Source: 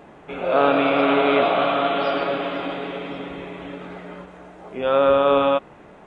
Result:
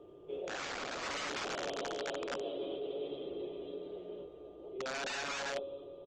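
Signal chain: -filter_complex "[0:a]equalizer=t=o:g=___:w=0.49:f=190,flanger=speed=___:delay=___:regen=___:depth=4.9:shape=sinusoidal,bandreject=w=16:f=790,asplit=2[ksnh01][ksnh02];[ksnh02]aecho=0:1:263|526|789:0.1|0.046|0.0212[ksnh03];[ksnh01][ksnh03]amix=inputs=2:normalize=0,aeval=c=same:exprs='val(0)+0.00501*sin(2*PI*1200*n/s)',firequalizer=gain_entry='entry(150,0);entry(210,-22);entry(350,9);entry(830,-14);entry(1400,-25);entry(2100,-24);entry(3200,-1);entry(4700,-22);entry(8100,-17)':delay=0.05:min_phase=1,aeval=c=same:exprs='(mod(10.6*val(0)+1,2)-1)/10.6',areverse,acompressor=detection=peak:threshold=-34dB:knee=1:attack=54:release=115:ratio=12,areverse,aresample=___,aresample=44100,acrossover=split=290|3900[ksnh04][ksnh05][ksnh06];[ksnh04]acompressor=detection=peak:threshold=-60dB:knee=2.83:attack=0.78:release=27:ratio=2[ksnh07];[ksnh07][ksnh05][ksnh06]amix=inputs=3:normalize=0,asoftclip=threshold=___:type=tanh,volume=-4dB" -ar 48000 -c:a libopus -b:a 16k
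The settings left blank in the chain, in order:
3, 0.53, 9.9, -39, 16000, -20.5dB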